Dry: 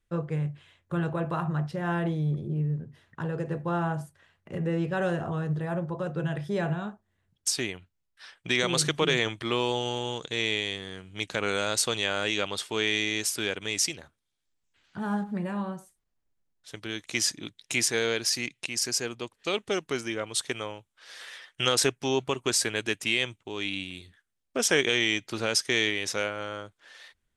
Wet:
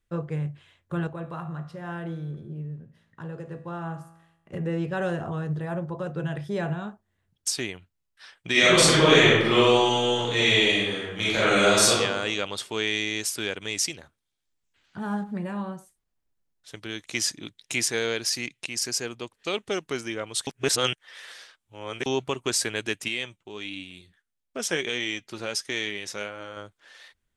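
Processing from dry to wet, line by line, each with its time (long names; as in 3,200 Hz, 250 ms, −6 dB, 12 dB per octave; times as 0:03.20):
0:01.07–0:04.53: tuned comb filter 55 Hz, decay 0.93 s
0:08.51–0:11.90: thrown reverb, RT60 1.1 s, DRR −9 dB
0:20.47–0:22.06: reverse
0:23.08–0:26.57: flanger 1.5 Hz, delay 3.1 ms, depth 2.9 ms, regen +65%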